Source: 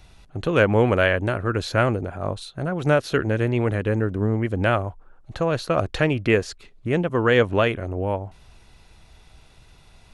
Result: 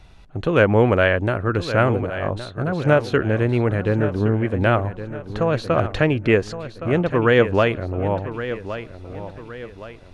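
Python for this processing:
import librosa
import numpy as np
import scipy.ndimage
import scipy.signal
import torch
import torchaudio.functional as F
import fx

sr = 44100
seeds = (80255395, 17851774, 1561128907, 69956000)

p1 = fx.lowpass(x, sr, hz=3300.0, slope=6)
p2 = p1 + fx.echo_feedback(p1, sr, ms=1117, feedback_pct=40, wet_db=-12, dry=0)
y = p2 * 10.0 ** (2.5 / 20.0)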